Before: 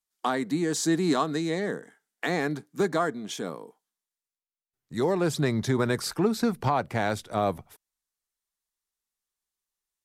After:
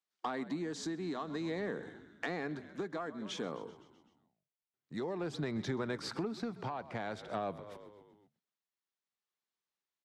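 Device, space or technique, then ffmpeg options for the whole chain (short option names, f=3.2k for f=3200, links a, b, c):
AM radio: -filter_complex "[0:a]asplit=7[a][b][c][d][e][f][g];[b]adelay=128,afreqshift=-51,volume=-19.5dB[h];[c]adelay=256,afreqshift=-102,volume=-23.5dB[i];[d]adelay=384,afreqshift=-153,volume=-27.5dB[j];[e]adelay=512,afreqshift=-204,volume=-31.5dB[k];[f]adelay=640,afreqshift=-255,volume=-35.6dB[l];[g]adelay=768,afreqshift=-306,volume=-39.6dB[m];[a][h][i][j][k][l][m]amix=inputs=7:normalize=0,highpass=140,lowpass=4.3k,acompressor=threshold=-31dB:ratio=6,asoftclip=type=tanh:threshold=-22.5dB,tremolo=f=0.52:d=0.33,volume=-1dB"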